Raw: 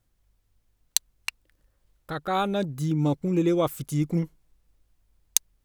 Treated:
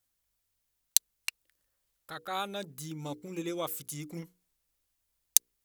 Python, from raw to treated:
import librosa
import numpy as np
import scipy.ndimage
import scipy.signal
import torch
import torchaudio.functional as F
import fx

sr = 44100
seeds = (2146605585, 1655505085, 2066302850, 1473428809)

y = fx.tilt_eq(x, sr, slope=3.0)
y = fx.hum_notches(y, sr, base_hz=60, count=8)
y = F.gain(torch.from_numpy(y), -8.5).numpy()